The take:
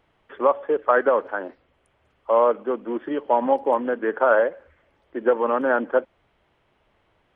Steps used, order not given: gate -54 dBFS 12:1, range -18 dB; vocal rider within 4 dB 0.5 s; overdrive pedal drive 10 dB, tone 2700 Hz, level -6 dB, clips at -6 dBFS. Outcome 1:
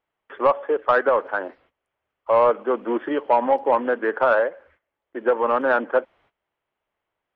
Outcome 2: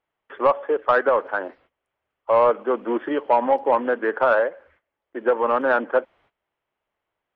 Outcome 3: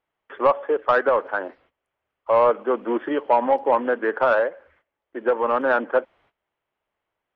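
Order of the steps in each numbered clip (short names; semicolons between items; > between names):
vocal rider > overdrive pedal > gate; gate > vocal rider > overdrive pedal; overdrive pedal > gate > vocal rider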